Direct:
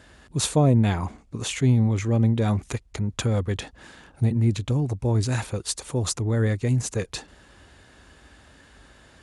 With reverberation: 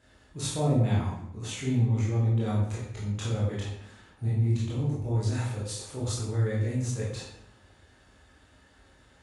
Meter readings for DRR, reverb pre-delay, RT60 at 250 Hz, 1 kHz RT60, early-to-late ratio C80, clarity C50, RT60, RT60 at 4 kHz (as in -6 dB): -7.5 dB, 16 ms, 0.90 s, 0.75 s, 4.5 dB, 1.5 dB, 0.75 s, 0.55 s